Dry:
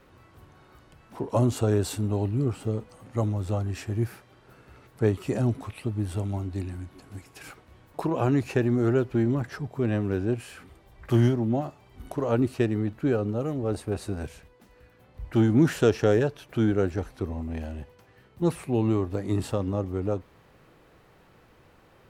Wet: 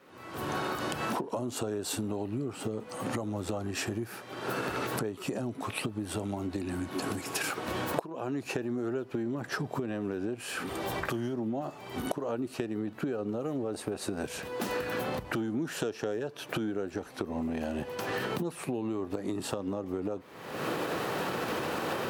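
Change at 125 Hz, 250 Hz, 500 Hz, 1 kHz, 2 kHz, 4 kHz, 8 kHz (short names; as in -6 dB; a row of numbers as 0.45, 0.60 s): -13.0, -6.5, -5.5, +1.5, +3.0, +4.5, +3.5 dB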